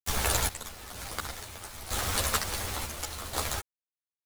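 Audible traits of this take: a quantiser's noise floor 6-bit, dither none; random-step tremolo 2.1 Hz, depth 85%; a shimmering, thickened sound

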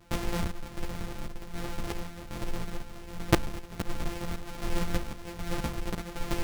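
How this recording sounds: a buzz of ramps at a fixed pitch in blocks of 256 samples; chopped level 1.3 Hz, depth 60%, duty 65%; a shimmering, thickened sound

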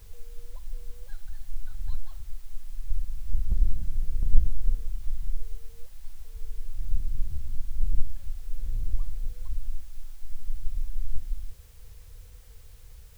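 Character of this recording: tremolo triangle 2.8 Hz, depth 35%; a quantiser's noise floor 10-bit, dither triangular

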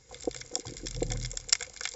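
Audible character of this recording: noise floor -54 dBFS; spectral tilt -2.0 dB/oct

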